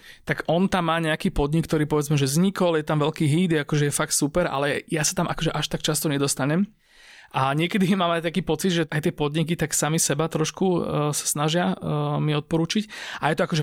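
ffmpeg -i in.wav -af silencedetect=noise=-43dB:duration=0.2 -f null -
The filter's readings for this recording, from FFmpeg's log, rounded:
silence_start: 6.69
silence_end: 6.97 | silence_duration: 0.28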